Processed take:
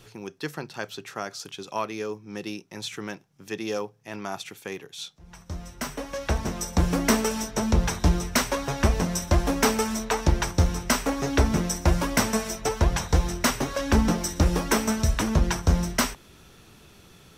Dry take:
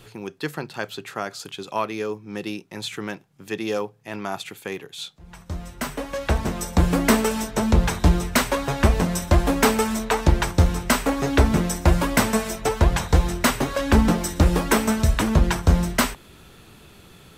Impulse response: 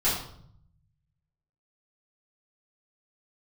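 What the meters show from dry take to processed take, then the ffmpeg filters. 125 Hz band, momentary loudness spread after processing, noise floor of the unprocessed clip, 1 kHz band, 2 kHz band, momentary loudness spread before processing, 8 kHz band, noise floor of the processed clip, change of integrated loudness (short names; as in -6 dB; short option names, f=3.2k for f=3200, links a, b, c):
-4.0 dB, 14 LU, -49 dBFS, -4.0 dB, -4.0 dB, 14 LU, -0.5 dB, -53 dBFS, -3.5 dB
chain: -af "equalizer=f=5.7k:t=o:w=0.25:g=9.5,volume=-4dB"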